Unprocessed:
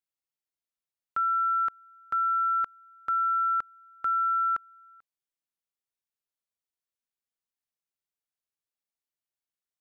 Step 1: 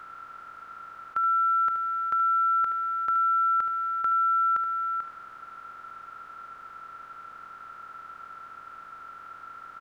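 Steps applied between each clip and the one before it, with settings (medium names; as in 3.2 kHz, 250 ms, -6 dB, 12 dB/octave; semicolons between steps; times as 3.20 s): spectral levelling over time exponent 0.2; on a send: delay 74 ms -10 dB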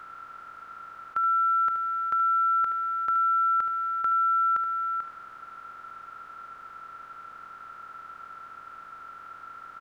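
no audible change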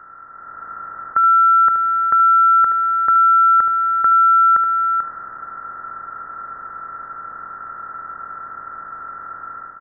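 level rider gain up to 9 dB; brick-wall FIR low-pass 2 kHz; trim +2.5 dB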